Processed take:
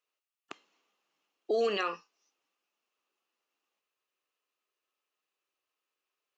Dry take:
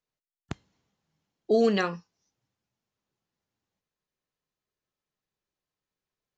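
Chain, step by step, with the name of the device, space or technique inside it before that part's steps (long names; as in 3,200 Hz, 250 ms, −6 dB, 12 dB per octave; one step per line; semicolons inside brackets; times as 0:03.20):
laptop speaker (high-pass filter 320 Hz 24 dB per octave; parametric band 1,200 Hz +9 dB 0.26 octaves; parametric band 2,700 Hz +10.5 dB 0.37 octaves; brickwall limiter −22 dBFS, peak gain reduction 10.5 dB)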